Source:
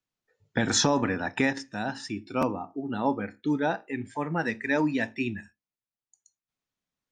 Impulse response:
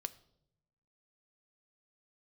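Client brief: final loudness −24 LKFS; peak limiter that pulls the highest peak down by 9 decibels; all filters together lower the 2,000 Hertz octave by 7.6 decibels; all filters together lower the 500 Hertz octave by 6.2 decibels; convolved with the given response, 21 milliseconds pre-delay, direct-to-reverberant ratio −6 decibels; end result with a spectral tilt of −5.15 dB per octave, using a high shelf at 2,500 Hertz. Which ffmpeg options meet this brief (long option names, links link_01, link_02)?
-filter_complex "[0:a]equalizer=frequency=500:width_type=o:gain=-7,equalizer=frequency=2000:width_type=o:gain=-6,highshelf=frequency=2500:gain=-7.5,alimiter=limit=-23.5dB:level=0:latency=1,asplit=2[link_01][link_02];[1:a]atrim=start_sample=2205,adelay=21[link_03];[link_02][link_03]afir=irnorm=-1:irlink=0,volume=8dB[link_04];[link_01][link_04]amix=inputs=2:normalize=0,volume=4.5dB"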